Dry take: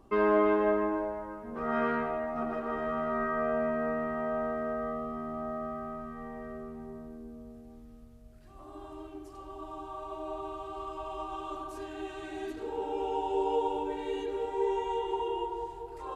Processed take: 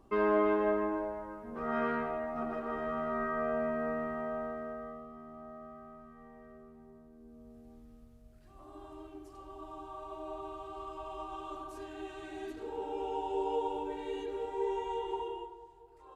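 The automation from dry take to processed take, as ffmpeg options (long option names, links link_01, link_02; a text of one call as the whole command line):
ffmpeg -i in.wav -af "volume=5dB,afade=type=out:start_time=4.01:duration=1.06:silence=0.354813,afade=type=in:start_time=7.12:duration=0.56:silence=0.398107,afade=type=out:start_time=15.15:duration=0.43:silence=0.266073" out.wav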